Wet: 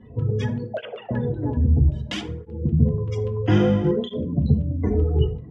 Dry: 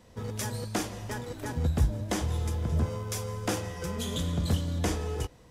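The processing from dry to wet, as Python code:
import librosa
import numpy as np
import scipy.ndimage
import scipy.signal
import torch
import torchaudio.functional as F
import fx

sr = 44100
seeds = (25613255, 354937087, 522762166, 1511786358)

y = fx.sine_speech(x, sr, at=(0.71, 1.11))
y = fx.tilt_eq(y, sr, slope=4.5, at=(1.83, 2.28), fade=0.02)
y = fx.spec_gate(y, sr, threshold_db=-20, keep='strong')
y = fx.filter_lfo_lowpass(y, sr, shape='square', hz=5.2, low_hz=670.0, high_hz=3000.0, q=3.5)
y = fx.rider(y, sr, range_db=4, speed_s=0.5)
y = fx.low_shelf_res(y, sr, hz=450.0, db=9.5, q=1.5)
y = fx.room_flutter(y, sr, wall_m=3.4, rt60_s=0.97, at=(3.46, 3.91))
y = fx.rev_fdn(y, sr, rt60_s=0.62, lf_ratio=1.2, hf_ratio=0.5, size_ms=42.0, drr_db=3.0)
y = fx.flanger_cancel(y, sr, hz=0.61, depth_ms=6.3)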